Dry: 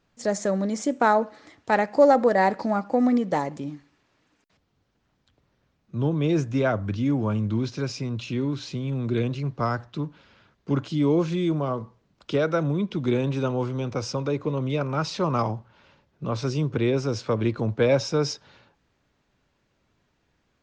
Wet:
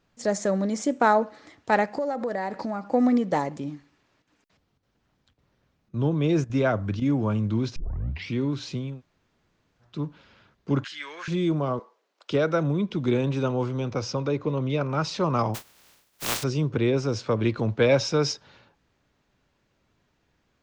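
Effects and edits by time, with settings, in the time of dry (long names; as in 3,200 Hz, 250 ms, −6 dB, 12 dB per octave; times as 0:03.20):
0:01.91–0:02.93: downward compressor 4 to 1, threshold −26 dBFS
0:03.72–0:07.02: square-wave tremolo 1.8 Hz, depth 65%, duty 90%
0:07.76: tape start 0.59 s
0:08.90–0:09.91: fill with room tone, crossfade 0.24 s
0:10.84–0:11.28: high-pass with resonance 1,700 Hz, resonance Q 7.5
0:11.79–0:12.31: high-pass filter 420 Hz 24 dB per octave
0:13.90–0:14.91: low-pass filter 6,800 Hz 24 dB per octave
0:15.54–0:16.42: compressing power law on the bin magnitudes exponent 0.14
0:17.43–0:18.32: parametric band 3,000 Hz +4 dB 2.2 octaves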